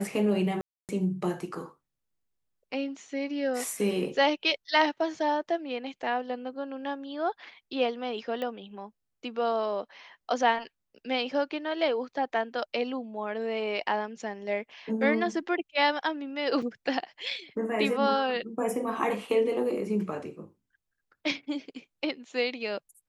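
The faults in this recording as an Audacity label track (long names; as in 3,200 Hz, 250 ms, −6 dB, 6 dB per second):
0.610000	0.890000	drop-out 278 ms
8.420000	8.420000	click −22 dBFS
16.620000	16.620000	drop-out 4.7 ms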